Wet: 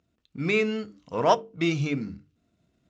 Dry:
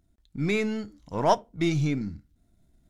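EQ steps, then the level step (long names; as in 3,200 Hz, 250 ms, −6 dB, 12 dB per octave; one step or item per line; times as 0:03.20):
loudspeaker in its box 110–7,000 Hz, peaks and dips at 470 Hz +6 dB, 1,200 Hz +6 dB, 2,700 Hz +9 dB
mains-hum notches 50/100/150/200/250/300/350/400/450 Hz
notch filter 850 Hz, Q 15
0.0 dB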